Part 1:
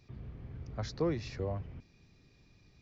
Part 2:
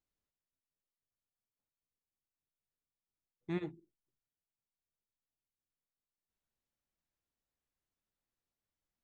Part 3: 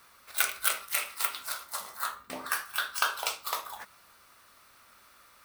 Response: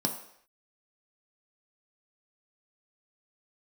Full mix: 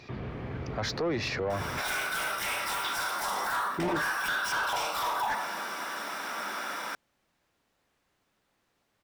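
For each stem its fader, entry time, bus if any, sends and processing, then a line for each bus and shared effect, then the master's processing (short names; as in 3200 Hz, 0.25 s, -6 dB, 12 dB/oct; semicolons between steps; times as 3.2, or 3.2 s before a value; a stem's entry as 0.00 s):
+1.0 dB, 0.00 s, no send, limiter -30 dBFS, peak gain reduction 9 dB
+2.5 dB, 0.30 s, no send, low shelf 260 Hz +10 dB
+2.0 dB, 1.50 s, send -5 dB, compressor 2:1, threshold -44 dBFS, peak gain reduction 13 dB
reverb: on, pre-delay 3 ms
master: overdrive pedal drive 28 dB, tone 2000 Hz, clips at -13 dBFS; limiter -24 dBFS, peak gain reduction 9 dB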